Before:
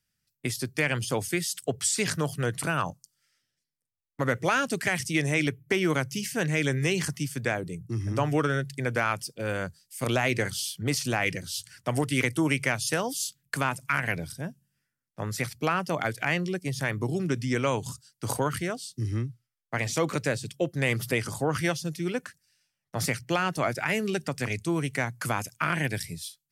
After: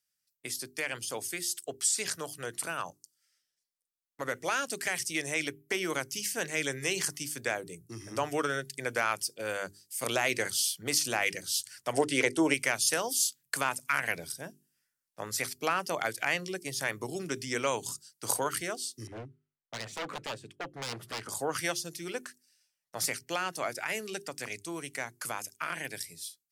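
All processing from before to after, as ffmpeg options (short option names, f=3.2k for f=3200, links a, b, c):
-filter_complex "[0:a]asettb=1/sr,asplit=3[a][b][c];[a]atrim=end=11.934[d];[b]atrim=start=11.93:end=12.54,asetpts=PTS-STARTPTS,afade=t=in:d=0.004:c=qsin,afade=t=out:st=0.606:d=0.004:c=qsin,lowpass=7.7k,equalizer=f=480:w=0.71:g=8,bandreject=f=1.2k:w=8.5[e];[c]atrim=start=12.536[f];[d][e]acrossfade=d=0.004:c1=hsin:c2=qsin[g];[g][f]acrossfade=d=0.004:c1=qsin:c2=hsin,asettb=1/sr,asplit=3[h][i][j];[h]atrim=end=19.074[k];[i]atrim=start=19.07:end=21.29,asetpts=PTS-STARTPTS,afade=t=in:d=0.004:c=qsin,afade=t=out:st=2.216:d=0.004:c=qsin,equalizer=f=5.2k:w=0.9:g=-13.5,aeval=exprs='0.0473*(abs(mod(val(0)/0.0473+3,4)-2)-1)':c=same,adynamicsmooth=sensitivity=8:basefreq=4.1k[l];[j]atrim=start=21.286[m];[k][l]acrossfade=d=0.004:c1=hsin:c2=qsin[n];[n][m]acrossfade=d=0.004:c1=qsin:c2=hsin,bass=f=250:g=-13,treble=f=4k:g=7,bandreject=f=50:t=h:w=6,bandreject=f=100:t=h:w=6,bandreject=f=150:t=h:w=6,bandreject=f=200:t=h:w=6,bandreject=f=250:t=h:w=6,bandreject=f=300:t=h:w=6,bandreject=f=350:t=h:w=6,bandreject=f=400:t=h:w=6,dynaudnorm=f=970:g=11:m=5.5dB,volume=-7.5dB"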